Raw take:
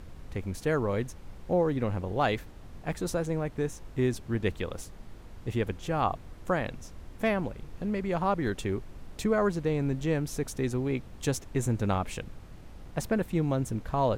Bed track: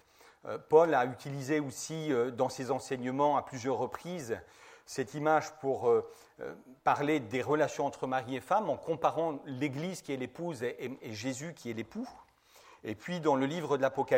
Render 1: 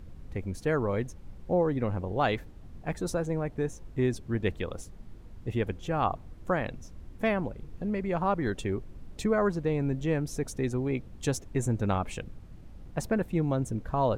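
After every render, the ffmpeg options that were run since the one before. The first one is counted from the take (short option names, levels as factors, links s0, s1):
-af "afftdn=nr=8:nf=-47"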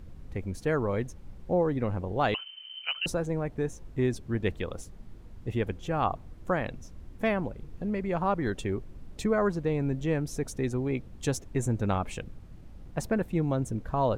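-filter_complex "[0:a]asettb=1/sr,asplit=3[s0][s1][s2];[s0]atrim=end=2.344[s3];[s1]atrim=start=2.34:end=3.06,asetpts=PTS-STARTPTS,afade=t=in:d=0.004:c=qsin,afade=t=out:st=0.716:d=0.004:c=qsin,lowpass=f=2600:t=q:w=0.5098,lowpass=f=2600:t=q:w=0.6013,lowpass=f=2600:t=q:w=0.9,lowpass=f=2600:t=q:w=2.563,afreqshift=-3100[s4];[s2]atrim=start=3.056[s5];[s3][s4]acrossfade=d=0.004:c1=hsin:c2=qsin[s6];[s6][s5]acrossfade=d=0.004:c1=qsin:c2=hsin"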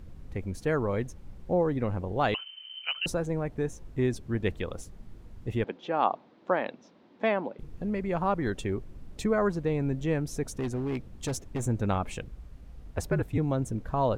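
-filter_complex "[0:a]asettb=1/sr,asplit=3[s0][s1][s2];[s0]atrim=end=5.644[s3];[s1]atrim=start=5.64:end=7.59,asetpts=PTS-STARTPTS,afade=t=in:d=0.004:c=qsin,afade=t=out:st=1.946:d=0.004:c=qsin,highpass=f=220:w=0.5412,highpass=f=220:w=1.3066,equalizer=f=580:t=q:w=4:g=3,equalizer=f=890:t=q:w=4:g=5,equalizer=f=3800:t=q:w=4:g=3,lowpass=f=4700:w=0.5412,lowpass=f=4700:w=1.3066[s4];[s2]atrim=start=7.586[s5];[s3][s4]acrossfade=d=0.004:c1=hsin:c2=qsin[s6];[s6][s5]acrossfade=d=0.004:c1=qsin:c2=hsin,asettb=1/sr,asplit=3[s7][s8][s9];[s7]atrim=end=10.554[s10];[s8]atrim=start=10.55:end=11.67,asetpts=PTS-STARTPTS,afade=t=in:d=0.004:c=qsin,afade=t=out:st=1.116:d=0.004:c=qsin,asoftclip=type=hard:threshold=0.0447[s11];[s9]atrim=start=11.666[s12];[s10][s11]acrossfade=d=0.004:c1=hsin:c2=qsin[s13];[s13][s12]acrossfade=d=0.004:c1=qsin:c2=hsin,asettb=1/sr,asplit=3[s14][s15][s16];[s14]atrim=end=12.274[s17];[s15]atrim=start=12.27:end=13.38,asetpts=PTS-STARTPTS,afade=t=in:d=0.004:c=qsin,afade=t=out:st=1.106:d=0.004:c=qsin,afreqshift=-62[s18];[s16]atrim=start=13.376[s19];[s17][s18]acrossfade=d=0.004:c1=hsin:c2=qsin[s20];[s20][s19]acrossfade=d=0.004:c1=qsin:c2=hsin"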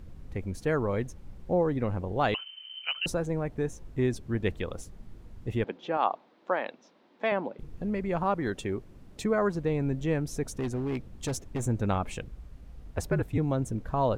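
-filter_complex "[0:a]asettb=1/sr,asplit=3[s0][s1][s2];[s0]atrim=end=5.974[s3];[s1]atrim=start=5.97:end=7.32,asetpts=PTS-STARTPTS,afade=t=in:d=0.004:c=qsin,afade=t=out:st=1.346:d=0.004:c=qsin,highpass=f=450:p=1[s4];[s2]atrim=start=7.316[s5];[s3][s4]acrossfade=d=0.004:c1=hsin:c2=qsin[s6];[s6][s5]acrossfade=d=0.004:c1=qsin:c2=hsin,asettb=1/sr,asplit=3[s7][s8][s9];[s7]atrim=end=8.234[s10];[s8]atrim=start=8.23:end=9.55,asetpts=PTS-STARTPTS,afade=t=in:d=0.004:c=qsin,afade=t=out:st=1.316:d=0.004:c=qsin,lowshelf=f=79:g=-9.5[s11];[s9]atrim=start=9.546[s12];[s10][s11]acrossfade=d=0.004:c1=hsin:c2=qsin[s13];[s13][s12]acrossfade=d=0.004:c1=qsin:c2=hsin"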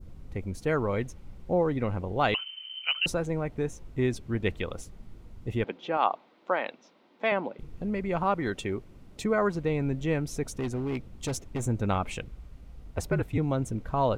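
-af "bandreject=f=1700:w=11,adynamicequalizer=threshold=0.00794:dfrequency=2300:dqfactor=0.73:tfrequency=2300:tqfactor=0.73:attack=5:release=100:ratio=0.375:range=2.5:mode=boostabove:tftype=bell"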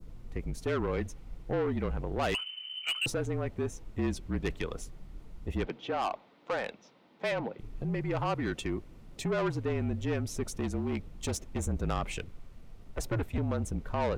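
-af "asoftclip=type=tanh:threshold=0.0531,afreqshift=-38"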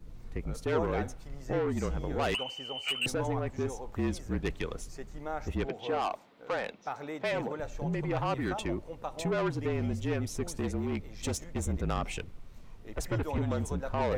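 -filter_complex "[1:a]volume=0.316[s0];[0:a][s0]amix=inputs=2:normalize=0"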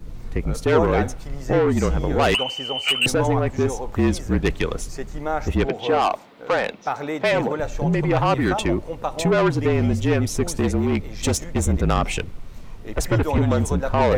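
-af "volume=3.98"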